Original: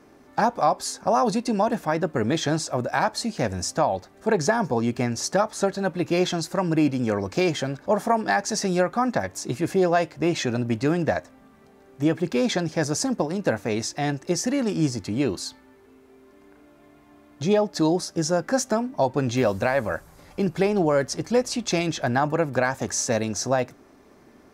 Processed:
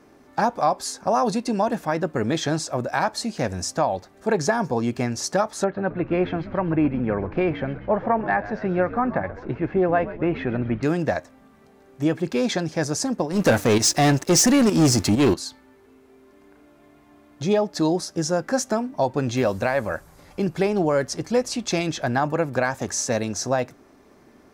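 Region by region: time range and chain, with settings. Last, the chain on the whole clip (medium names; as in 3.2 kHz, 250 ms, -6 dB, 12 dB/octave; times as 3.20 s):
5.64–10.83 s: low-pass 2.4 kHz 24 dB/octave + frequency-shifting echo 131 ms, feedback 64%, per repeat -81 Hz, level -15 dB
13.32–15.34 s: treble shelf 6.2 kHz +8 dB + waveshaping leveller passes 3 + volume shaper 131 bpm, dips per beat 1, -10 dB, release 126 ms
whole clip: none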